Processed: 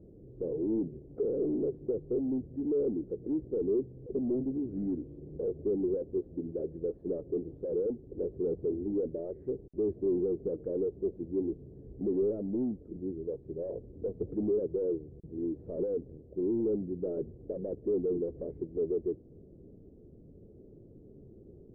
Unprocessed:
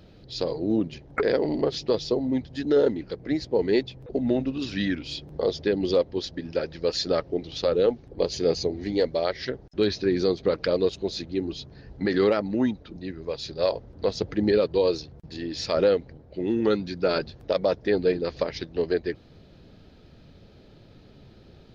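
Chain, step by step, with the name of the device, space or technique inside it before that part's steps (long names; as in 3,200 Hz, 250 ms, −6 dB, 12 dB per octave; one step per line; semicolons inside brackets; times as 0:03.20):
overdriven synthesiser ladder filter (soft clipping −27.5 dBFS, distortion −6 dB; transistor ladder low-pass 470 Hz, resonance 50%)
level +5 dB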